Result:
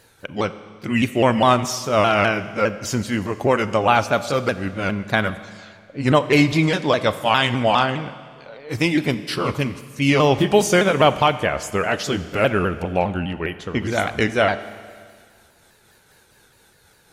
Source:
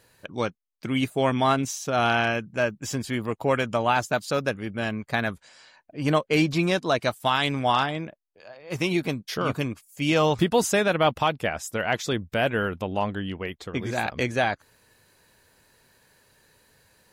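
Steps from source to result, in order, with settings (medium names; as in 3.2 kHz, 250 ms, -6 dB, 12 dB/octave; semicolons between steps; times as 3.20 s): sawtooth pitch modulation -3 st, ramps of 204 ms; Schroeder reverb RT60 1.9 s, combs from 29 ms, DRR 13 dB; trim +6.5 dB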